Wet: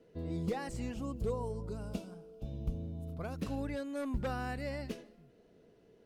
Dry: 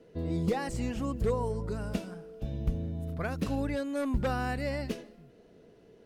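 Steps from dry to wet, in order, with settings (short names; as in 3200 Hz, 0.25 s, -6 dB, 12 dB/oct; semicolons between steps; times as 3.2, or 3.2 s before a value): 0.94–3.34 bell 1800 Hz -12.5 dB 0.54 oct; gain -6 dB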